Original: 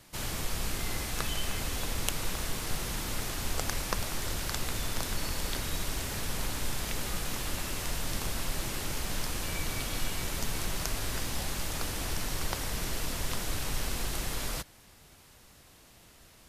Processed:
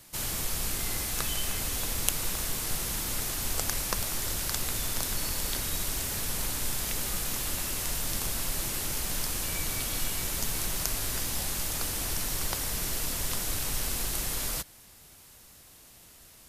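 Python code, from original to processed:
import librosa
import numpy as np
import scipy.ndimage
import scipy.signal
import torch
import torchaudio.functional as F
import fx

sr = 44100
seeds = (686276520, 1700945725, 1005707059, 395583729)

y = fx.high_shelf(x, sr, hz=6300.0, db=11.0)
y = y * librosa.db_to_amplitude(-1.0)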